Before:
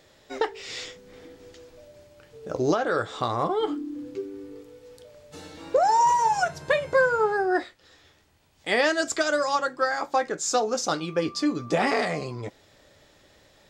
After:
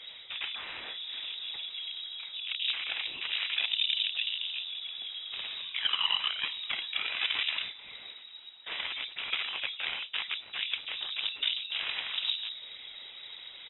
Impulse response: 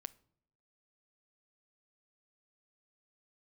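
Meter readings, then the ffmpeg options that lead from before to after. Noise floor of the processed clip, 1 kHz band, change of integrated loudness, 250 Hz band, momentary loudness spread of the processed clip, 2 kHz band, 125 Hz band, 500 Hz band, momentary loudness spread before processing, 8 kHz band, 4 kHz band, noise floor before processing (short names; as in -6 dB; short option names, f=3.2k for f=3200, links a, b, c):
-49 dBFS, -22.0 dB, -7.0 dB, under -30 dB, 14 LU, -6.0 dB, under -25 dB, -32.0 dB, 17 LU, under -40 dB, +8.5 dB, -59 dBFS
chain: -filter_complex "[0:a]equalizer=f=98:w=0.57:g=12.5,bandreject=f=60:t=h:w=6,bandreject=f=120:t=h:w=6,bandreject=f=180:t=h:w=6,bandreject=f=240:t=h:w=6,bandreject=f=300:t=h:w=6,bandreject=f=360:t=h:w=6,bandreject=f=420:t=h:w=6,bandreject=f=480:t=h:w=6,bandreject=f=540:t=h:w=6,areverse,acompressor=threshold=-30dB:ratio=16,areverse,alimiter=level_in=6.5dB:limit=-24dB:level=0:latency=1:release=183,volume=-6.5dB,afftfilt=real='hypot(re,im)*cos(2*PI*random(0))':imag='hypot(re,im)*sin(2*PI*random(1))':win_size=512:overlap=0.75,aeval=exprs='0.0299*(cos(1*acos(clip(val(0)/0.0299,-1,1)))-cos(1*PI/2))+0.0015*(cos(6*acos(clip(val(0)/0.0299,-1,1)))-cos(6*PI/2))+0.0106*(cos(7*acos(clip(val(0)/0.0299,-1,1)))-cos(7*PI/2))':c=same,lowpass=f=3.3k:t=q:w=0.5098,lowpass=f=3.3k:t=q:w=0.6013,lowpass=f=3.3k:t=q:w=0.9,lowpass=f=3.3k:t=q:w=2.563,afreqshift=-3900,asplit=2[a][b];[b]adelay=401,lowpass=f=2.4k:p=1,volume=-22.5dB,asplit=2[c][d];[d]adelay=401,lowpass=f=2.4k:p=1,volume=0.46,asplit=2[e][f];[f]adelay=401,lowpass=f=2.4k:p=1,volume=0.46[g];[a][c][e][g]amix=inputs=4:normalize=0,aexciter=amount=2:drive=3.6:freq=2.2k,volume=8.5dB"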